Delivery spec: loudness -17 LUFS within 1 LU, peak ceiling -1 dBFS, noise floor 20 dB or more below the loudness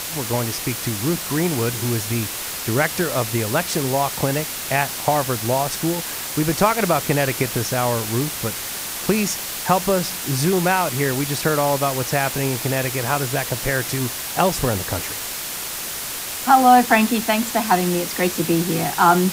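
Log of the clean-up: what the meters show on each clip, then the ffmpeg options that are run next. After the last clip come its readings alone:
noise floor -29 dBFS; noise floor target -41 dBFS; loudness -20.5 LUFS; peak level -2.0 dBFS; loudness target -17.0 LUFS
-> -af "afftdn=nr=12:nf=-29"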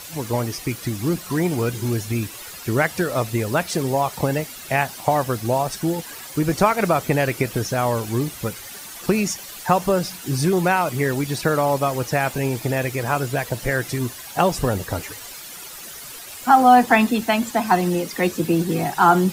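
noise floor -37 dBFS; noise floor target -42 dBFS
-> -af "afftdn=nr=6:nf=-37"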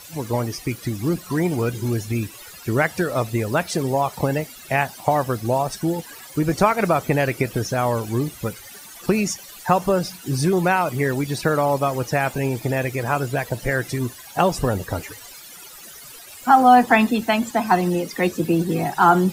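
noise floor -41 dBFS; noise floor target -42 dBFS
-> -af "afftdn=nr=6:nf=-41"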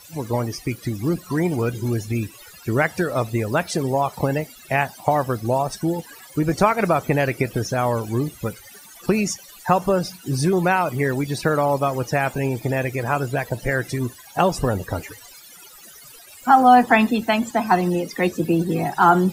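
noise floor -45 dBFS; loudness -21.5 LUFS; peak level -2.5 dBFS; loudness target -17.0 LUFS
-> -af "volume=1.68,alimiter=limit=0.891:level=0:latency=1"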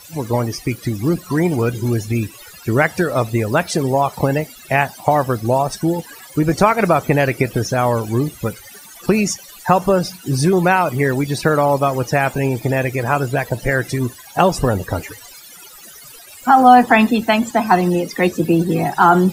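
loudness -17.5 LUFS; peak level -1.0 dBFS; noise floor -40 dBFS

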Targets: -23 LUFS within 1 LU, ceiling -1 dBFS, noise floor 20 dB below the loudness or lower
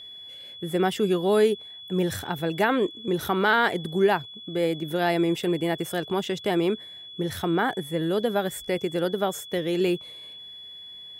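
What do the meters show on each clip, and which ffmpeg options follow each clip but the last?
steady tone 3.4 kHz; tone level -40 dBFS; loudness -25.5 LUFS; peak level -10.5 dBFS; loudness target -23.0 LUFS
-> -af "bandreject=f=3400:w=30"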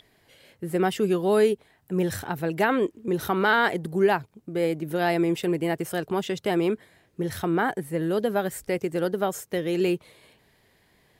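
steady tone not found; loudness -26.0 LUFS; peak level -11.0 dBFS; loudness target -23.0 LUFS
-> -af "volume=1.41"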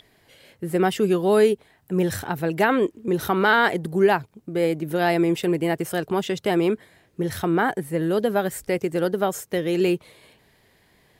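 loudness -23.0 LUFS; peak level -8.0 dBFS; noise floor -61 dBFS

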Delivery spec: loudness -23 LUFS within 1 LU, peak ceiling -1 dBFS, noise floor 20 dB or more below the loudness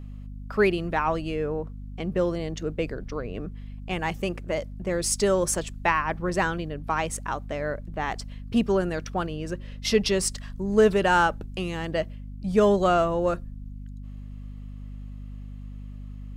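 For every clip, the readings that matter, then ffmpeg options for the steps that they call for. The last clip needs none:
hum 50 Hz; highest harmonic 250 Hz; hum level -36 dBFS; loudness -26.0 LUFS; peak level -8.0 dBFS; loudness target -23.0 LUFS
-> -af "bandreject=f=50:t=h:w=4,bandreject=f=100:t=h:w=4,bandreject=f=150:t=h:w=4,bandreject=f=200:t=h:w=4,bandreject=f=250:t=h:w=4"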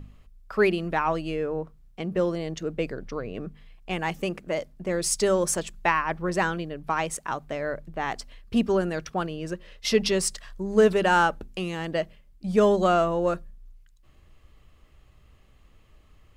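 hum not found; loudness -26.5 LUFS; peak level -8.0 dBFS; loudness target -23.0 LUFS
-> -af "volume=1.5"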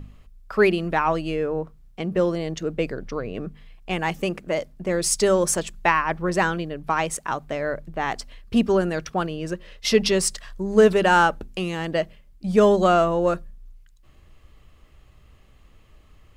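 loudness -23.0 LUFS; peak level -4.5 dBFS; noise floor -53 dBFS

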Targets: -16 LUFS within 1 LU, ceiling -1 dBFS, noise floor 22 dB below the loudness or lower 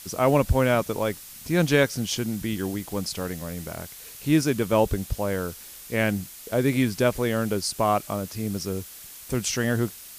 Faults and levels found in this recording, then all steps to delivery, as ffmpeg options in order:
noise floor -43 dBFS; noise floor target -48 dBFS; loudness -25.5 LUFS; peak level -7.5 dBFS; loudness target -16.0 LUFS
-> -af "afftdn=nr=6:nf=-43"
-af "volume=2.99,alimiter=limit=0.891:level=0:latency=1"

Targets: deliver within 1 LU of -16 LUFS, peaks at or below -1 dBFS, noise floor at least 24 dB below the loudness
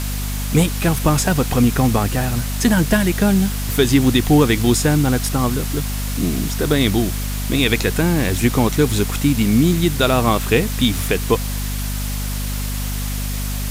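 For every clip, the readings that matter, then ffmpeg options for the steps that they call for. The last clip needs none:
hum 50 Hz; highest harmonic 250 Hz; hum level -21 dBFS; noise floor -23 dBFS; noise floor target -42 dBFS; loudness -18.0 LUFS; peak level -2.5 dBFS; loudness target -16.0 LUFS
-> -af "bandreject=f=50:t=h:w=6,bandreject=f=100:t=h:w=6,bandreject=f=150:t=h:w=6,bandreject=f=200:t=h:w=6,bandreject=f=250:t=h:w=6"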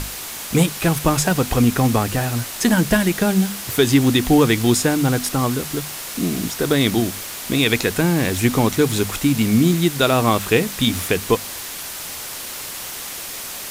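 hum not found; noise floor -31 dBFS; noise floor target -43 dBFS
-> -af "afftdn=nr=12:nf=-31"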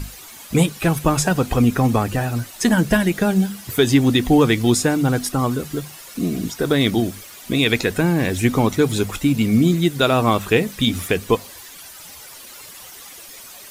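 noise floor -40 dBFS; noise floor target -43 dBFS
-> -af "afftdn=nr=6:nf=-40"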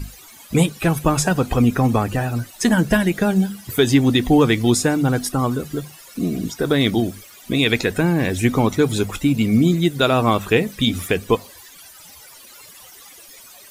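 noise floor -44 dBFS; loudness -19.0 LUFS; peak level -3.0 dBFS; loudness target -16.0 LUFS
-> -af "volume=1.41,alimiter=limit=0.891:level=0:latency=1"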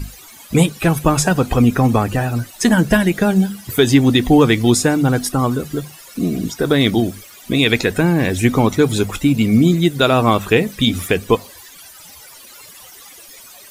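loudness -16.0 LUFS; peak level -1.0 dBFS; noise floor -41 dBFS

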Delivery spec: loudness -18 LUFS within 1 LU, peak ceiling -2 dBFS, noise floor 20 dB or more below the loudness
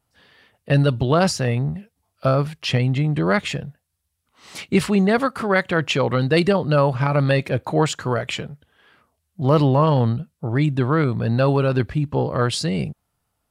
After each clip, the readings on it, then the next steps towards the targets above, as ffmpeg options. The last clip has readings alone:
loudness -20.5 LUFS; peak level -6.0 dBFS; loudness target -18.0 LUFS
-> -af "volume=1.33"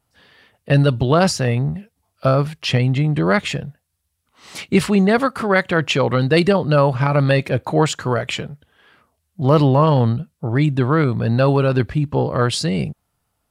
loudness -18.0 LUFS; peak level -3.5 dBFS; noise floor -72 dBFS

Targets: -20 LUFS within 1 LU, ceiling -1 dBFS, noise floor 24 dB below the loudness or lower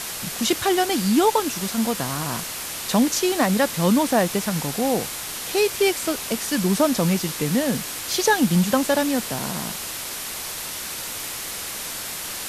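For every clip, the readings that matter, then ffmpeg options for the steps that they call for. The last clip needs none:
noise floor -32 dBFS; noise floor target -47 dBFS; loudness -22.5 LUFS; peak level -6.0 dBFS; loudness target -20.0 LUFS
-> -af "afftdn=nr=15:nf=-32"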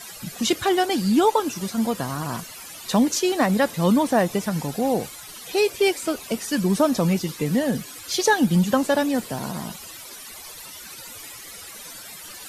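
noise floor -40 dBFS; noise floor target -47 dBFS
-> -af "afftdn=nr=7:nf=-40"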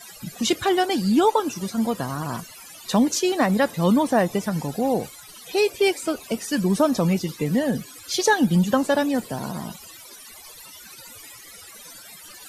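noise floor -44 dBFS; noise floor target -47 dBFS
-> -af "afftdn=nr=6:nf=-44"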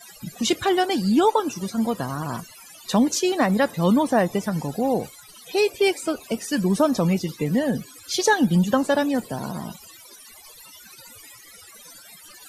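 noise floor -47 dBFS; loudness -22.5 LUFS; peak level -7.0 dBFS; loudness target -20.0 LUFS
-> -af "volume=1.33"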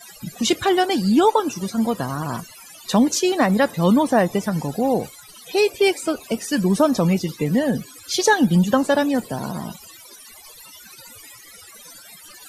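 loudness -20.0 LUFS; peak level -4.5 dBFS; noise floor -44 dBFS

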